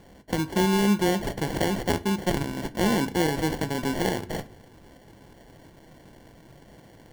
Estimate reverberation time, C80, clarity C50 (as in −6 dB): 0.45 s, 23.5 dB, 19.0 dB